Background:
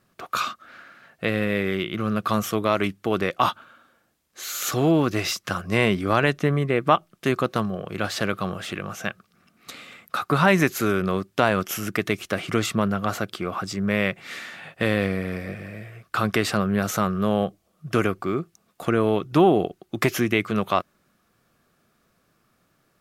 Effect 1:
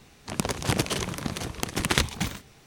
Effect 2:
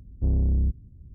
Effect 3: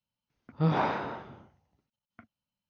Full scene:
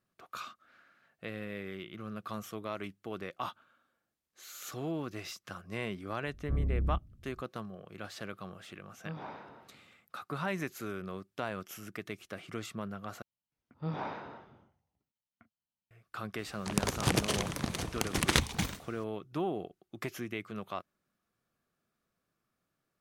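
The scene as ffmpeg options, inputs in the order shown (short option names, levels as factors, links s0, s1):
-filter_complex "[3:a]asplit=2[s0][s1];[0:a]volume=0.141,asplit=2[s2][s3];[s2]atrim=end=13.224[s4];[s1]atrim=end=2.69,asetpts=PTS-STARTPTS,volume=0.299[s5];[s3]atrim=start=15.906[s6];[2:a]atrim=end=1.14,asetpts=PTS-STARTPTS,volume=0.376,afade=t=in:d=0.004:c=hsin,afade=t=out:st=1.136:d=0.004:c=hsin,adelay=6270[s7];[s0]atrim=end=2.69,asetpts=PTS-STARTPTS,volume=0.15,afade=t=in:d=0.004:c=hsin,afade=t=out:st=2.686:d=0.004:c=hsin,adelay=8450[s8];[1:a]atrim=end=2.66,asetpts=PTS-STARTPTS,volume=0.668,afade=t=in:d=0.004:c=hsin,afade=t=out:st=2.656:d=0.004:c=hsin,adelay=16380[s9];[s4][s5]acrossfade=d=0.004:c1=hsin:c2=hsin[s10];[s10][s6]acrossfade=d=0.004:c1=hsin:c2=hsin[s11];[s11][s7][s8][s9]amix=inputs=4:normalize=0"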